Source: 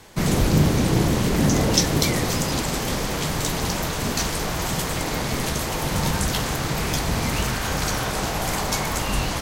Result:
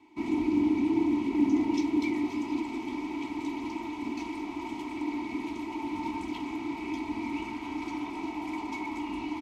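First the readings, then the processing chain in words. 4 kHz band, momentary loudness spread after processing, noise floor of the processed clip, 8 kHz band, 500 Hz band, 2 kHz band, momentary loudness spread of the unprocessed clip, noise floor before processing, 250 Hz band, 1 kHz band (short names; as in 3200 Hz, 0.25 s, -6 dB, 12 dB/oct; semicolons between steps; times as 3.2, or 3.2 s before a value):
-21.0 dB, 10 LU, -39 dBFS, -29.0 dB, -11.5 dB, -13.0 dB, 6 LU, -27 dBFS, -2.5 dB, -9.5 dB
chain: vowel filter u; comb 3.1 ms, depth 87%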